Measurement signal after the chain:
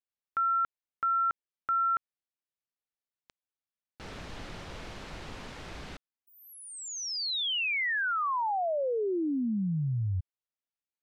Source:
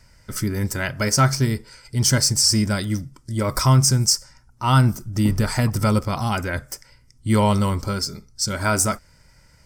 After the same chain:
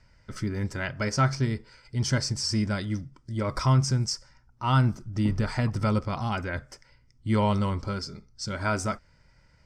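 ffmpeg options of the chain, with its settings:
-af "lowpass=4300,volume=0.501"

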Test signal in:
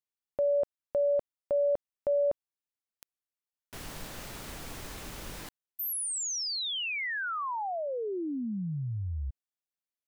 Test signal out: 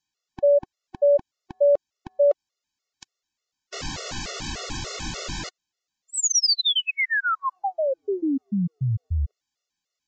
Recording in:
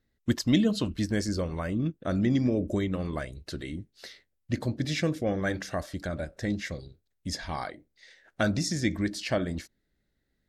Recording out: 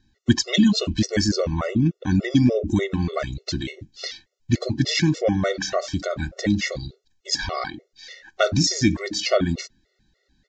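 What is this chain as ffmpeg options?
-filter_complex "[0:a]equalizer=f=5300:t=o:w=1.5:g=6,aresample=16000,aresample=44100,asplit=2[s0][s1];[s1]acompressor=threshold=0.0112:ratio=6:attack=1.8:release=79,volume=0.794[s2];[s0][s2]amix=inputs=2:normalize=0,afftfilt=real='re*gt(sin(2*PI*3.4*pts/sr)*(1-2*mod(floor(b*sr/1024/370),2)),0)':imag='im*gt(sin(2*PI*3.4*pts/sr)*(1-2*mod(floor(b*sr/1024/370),2)),0)':win_size=1024:overlap=0.75,volume=2.66"

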